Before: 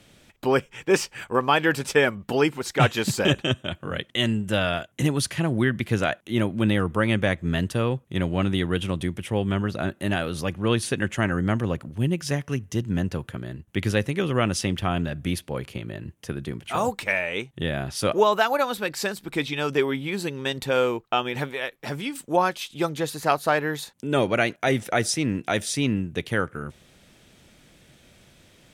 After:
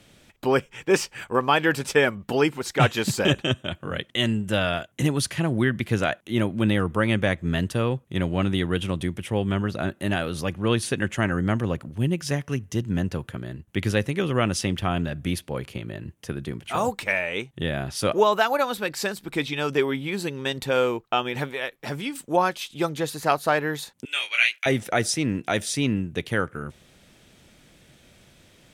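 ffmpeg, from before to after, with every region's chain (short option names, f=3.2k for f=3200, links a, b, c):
-filter_complex "[0:a]asettb=1/sr,asplit=3[a][b][c];[a]atrim=end=24.054[d];[b]atrim=start=24.05:end=24.66,asetpts=PTS-STARTPTS,afade=t=in:d=0.004:c=qsin,afade=t=out:st=0.606:d=0.004:c=qsin,highpass=f=2.5k:t=q:w=2.7,asplit=2[e][f];[f]adelay=24,volume=-4dB[g];[e][g]amix=inputs=2:normalize=0,atrim=end_sample=26901[h];[c]atrim=start=24.656[i];[d][h]acrossfade=d=0.004:c1=hsin:c2=qsin[j];[j][i]acrossfade=d=0.004:c1=qsin:c2=hsin"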